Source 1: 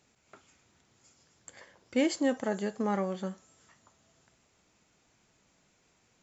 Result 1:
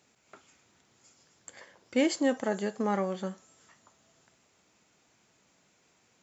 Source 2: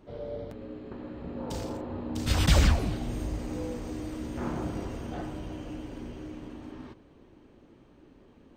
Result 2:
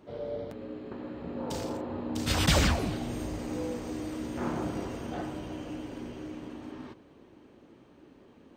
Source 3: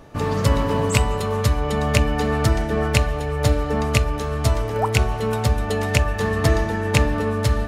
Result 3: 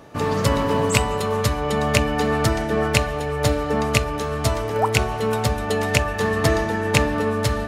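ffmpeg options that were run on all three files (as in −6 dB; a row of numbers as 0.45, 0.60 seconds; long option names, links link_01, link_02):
-af "highpass=frequency=150:poles=1,volume=2dB"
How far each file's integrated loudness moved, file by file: +1.0, −1.0, 0.0 LU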